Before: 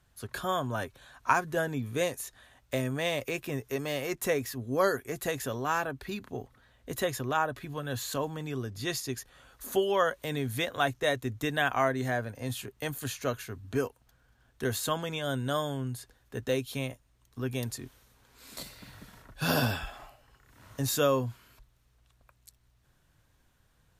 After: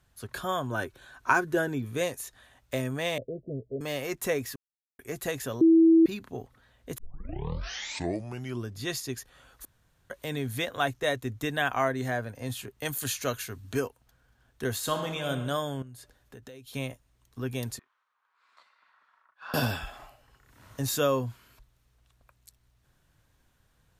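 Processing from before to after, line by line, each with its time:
0.71–1.85 small resonant body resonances 350/1500 Hz, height 10 dB
3.18–3.81 rippled Chebyshev low-pass 660 Hz, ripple 3 dB
4.56–4.99 mute
5.61–6.06 bleep 327 Hz -14.5 dBFS
6.98 tape start 1.72 s
9.65–10.1 room tone
12.85–13.8 high shelf 2400 Hz +8 dB
14.8–15.29 reverb throw, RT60 1.2 s, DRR 4.5 dB
15.82–16.74 compressor 10:1, threshold -43 dBFS
17.79–19.54 ladder band-pass 1300 Hz, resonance 55%

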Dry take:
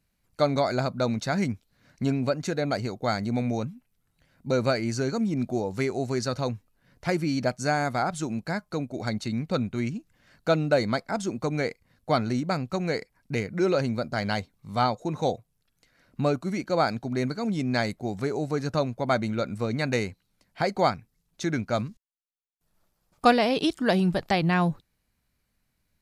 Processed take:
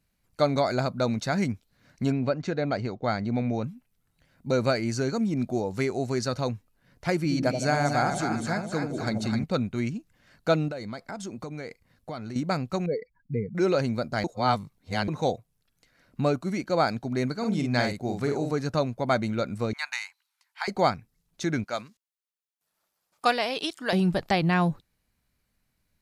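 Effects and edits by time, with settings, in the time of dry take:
2.12–3.64 air absorption 140 m
7.17–9.44 split-band echo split 740 Hz, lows 82 ms, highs 0.259 s, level -4.5 dB
10.68–12.36 compressor 5:1, threshold -33 dBFS
12.86–13.55 spectral contrast raised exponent 2.4
14.24–15.08 reverse
17.35–18.52 doubler 49 ms -5 dB
19.73–20.68 elliptic high-pass 880 Hz, stop band 50 dB
21.64–23.93 HPF 910 Hz 6 dB/oct

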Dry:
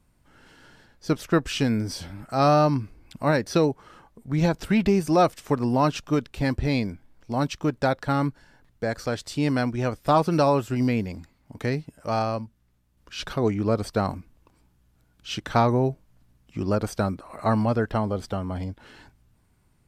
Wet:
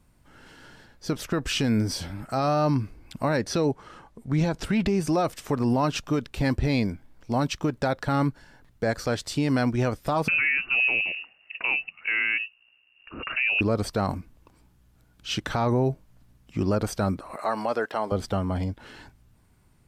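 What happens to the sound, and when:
3.38–5.09 LPF 11000 Hz
10.28–13.61 inverted band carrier 2800 Hz
17.36–18.12 HPF 470 Hz
whole clip: limiter -18.5 dBFS; gain +3 dB

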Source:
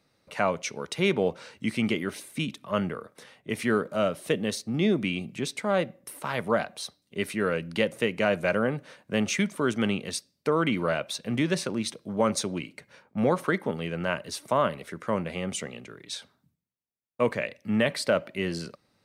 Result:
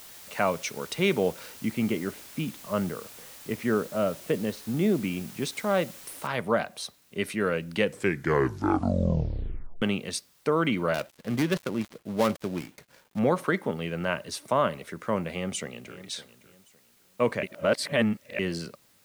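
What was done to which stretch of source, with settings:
1.54–5.42 LPF 1300 Hz 6 dB/oct
6.27 noise floor step -47 dB -63 dB
7.74 tape stop 2.08 s
10.94–13.19 switching dead time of 0.17 ms
15.29–15.98 echo throw 0.56 s, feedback 25%, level -15.5 dB
17.43–18.39 reverse

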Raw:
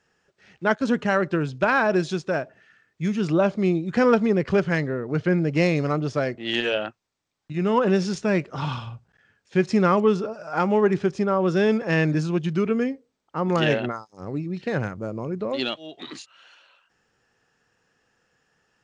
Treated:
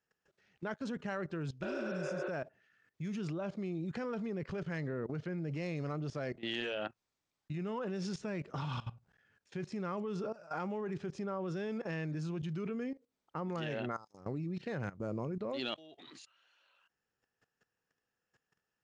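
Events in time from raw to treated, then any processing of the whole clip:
1.65–2.26 spectral repair 300–4700 Hz
whole clip: compressor 1.5:1, threshold -27 dBFS; dynamic EQ 150 Hz, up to +3 dB, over -43 dBFS, Q 3.5; level quantiser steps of 17 dB; gain -3.5 dB

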